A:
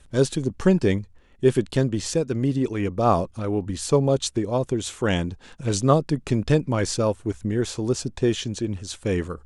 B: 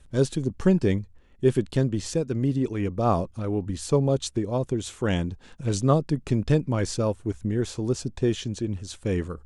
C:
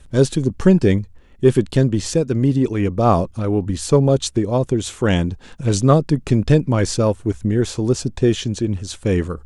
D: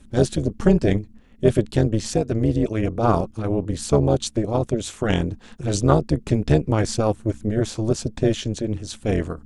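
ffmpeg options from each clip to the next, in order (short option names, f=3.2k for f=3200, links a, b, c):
-af "lowshelf=f=340:g=5,volume=-5dB"
-af "acontrast=38,volume=2.5dB"
-af "tremolo=f=220:d=0.824"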